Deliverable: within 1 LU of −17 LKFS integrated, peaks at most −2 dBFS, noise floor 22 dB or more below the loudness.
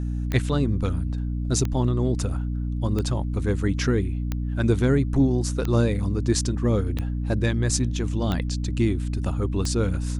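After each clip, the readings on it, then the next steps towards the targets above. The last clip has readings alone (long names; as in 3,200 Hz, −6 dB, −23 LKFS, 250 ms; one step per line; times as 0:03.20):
number of clicks 8; mains hum 60 Hz; hum harmonics up to 300 Hz; level of the hum −24 dBFS; integrated loudness −24.5 LKFS; sample peak −8.0 dBFS; target loudness −17.0 LKFS
→ click removal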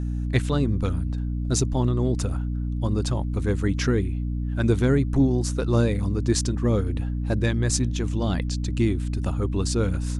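number of clicks 0; mains hum 60 Hz; hum harmonics up to 300 Hz; level of the hum −24 dBFS
→ hum removal 60 Hz, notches 5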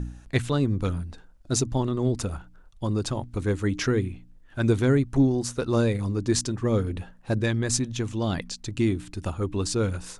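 mains hum none found; integrated loudness −26.5 LKFS; sample peak −10.0 dBFS; target loudness −17.0 LKFS
→ level +9.5 dB
brickwall limiter −2 dBFS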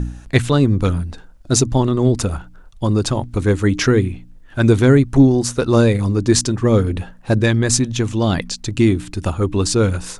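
integrated loudness −17.0 LKFS; sample peak −2.0 dBFS; background noise floor −42 dBFS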